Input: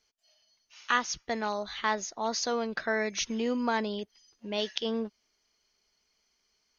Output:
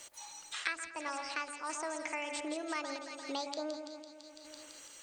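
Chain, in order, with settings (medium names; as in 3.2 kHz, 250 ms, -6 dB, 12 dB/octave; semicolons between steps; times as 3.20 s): treble shelf 5.5 kHz +10 dB; two-band feedback delay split 1.4 kHz, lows 157 ms, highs 226 ms, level -8 dB; random-step tremolo; speed mistake 33 rpm record played at 45 rpm; tone controls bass -6 dB, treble -6 dB; de-hum 48.01 Hz, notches 18; three bands compressed up and down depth 100%; trim -6 dB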